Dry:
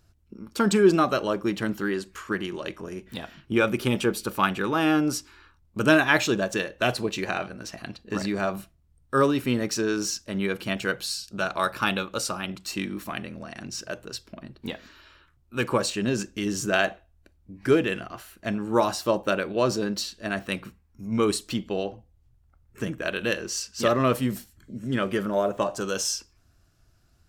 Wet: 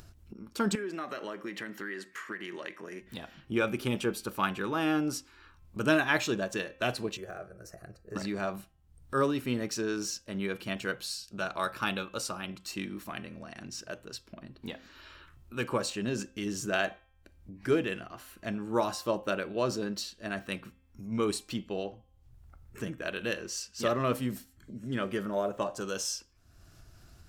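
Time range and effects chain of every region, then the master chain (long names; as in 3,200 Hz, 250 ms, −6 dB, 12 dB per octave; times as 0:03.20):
0:00.75–0:03.01: parametric band 1,900 Hz +13.5 dB 0.44 octaves + downward compressor 5 to 1, threshold −27 dBFS + high-pass filter 220 Hz
0:07.17–0:08.16: de-essing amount 75% + parametric band 2,600 Hz −14.5 dB 1.8 octaves + phaser with its sweep stopped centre 930 Hz, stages 6
whole clip: hum removal 263.2 Hz, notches 13; upward compression, threshold −34 dBFS; level −6.5 dB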